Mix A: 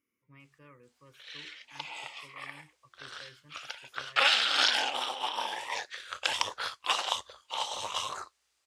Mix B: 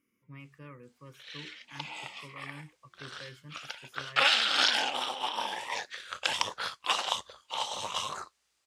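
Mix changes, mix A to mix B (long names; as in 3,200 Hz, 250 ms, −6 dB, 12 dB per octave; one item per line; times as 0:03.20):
speech +5.0 dB
master: add parametric band 180 Hz +8 dB 1 octave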